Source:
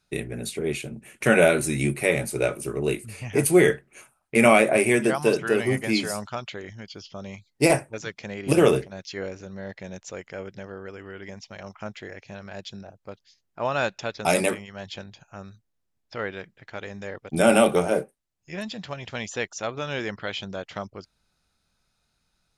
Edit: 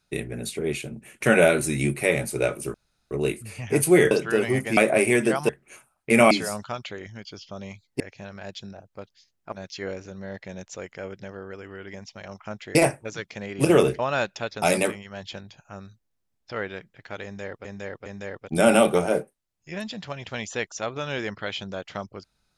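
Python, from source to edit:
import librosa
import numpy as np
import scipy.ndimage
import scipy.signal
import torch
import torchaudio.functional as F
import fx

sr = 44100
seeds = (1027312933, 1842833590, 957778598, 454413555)

y = fx.edit(x, sr, fx.insert_room_tone(at_s=2.74, length_s=0.37),
    fx.swap(start_s=3.74, length_s=0.82, other_s=5.28, other_length_s=0.66),
    fx.swap(start_s=7.63, length_s=1.24, other_s=12.1, other_length_s=1.52),
    fx.repeat(start_s=16.87, length_s=0.41, count=3), tone=tone)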